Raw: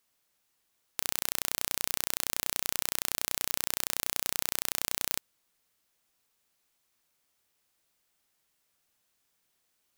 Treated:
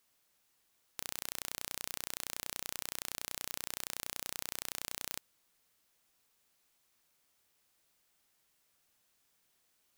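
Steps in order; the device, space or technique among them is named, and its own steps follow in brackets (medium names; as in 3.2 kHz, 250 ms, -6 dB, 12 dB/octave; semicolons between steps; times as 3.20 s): saturation between pre-emphasis and de-emphasis (treble shelf 4.3 kHz +12 dB; saturation -6 dBFS, distortion -8 dB; treble shelf 4.3 kHz -12 dB); trim +1 dB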